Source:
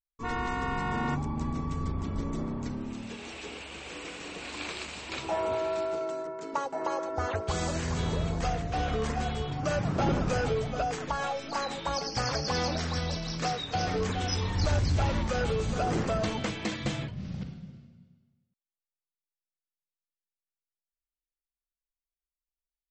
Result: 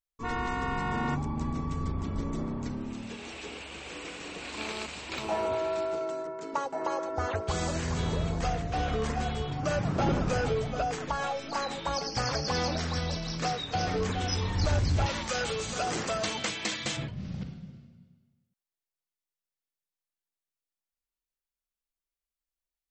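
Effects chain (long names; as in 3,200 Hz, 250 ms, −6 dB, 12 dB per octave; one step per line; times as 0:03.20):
0:04.58–0:05.46: phone interference −41 dBFS
0:15.06–0:16.97: spectral tilt +3 dB per octave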